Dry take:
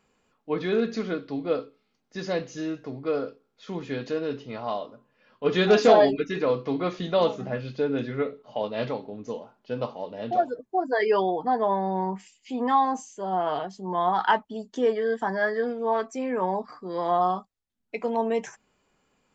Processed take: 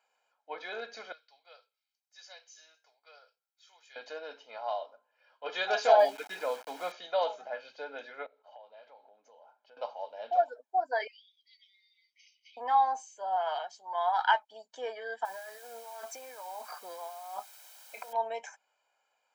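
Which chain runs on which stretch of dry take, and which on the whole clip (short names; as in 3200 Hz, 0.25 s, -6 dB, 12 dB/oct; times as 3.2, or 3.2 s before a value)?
1.12–3.96 HPF 340 Hz 24 dB/oct + differentiator
5.99–6.92 bell 200 Hz +11 dB 0.83 oct + sample gate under -34.5 dBFS
8.26–9.77 high shelf 4100 Hz -7.5 dB + compressor 4:1, threshold -46 dBFS
11.07–12.57 brick-wall FIR band-pass 1900–6300 Hz + compressor 10:1, threshold -48 dBFS
13.36–14.52 LPF 3100 Hz 6 dB/oct + tilt +4 dB/oct
15.25–18.13 negative-ratio compressor -36 dBFS + requantised 8-bit, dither triangular
whole clip: HPF 480 Hz 24 dB/oct; bell 920 Hz +2.5 dB; comb 1.3 ms, depth 66%; gain -7.5 dB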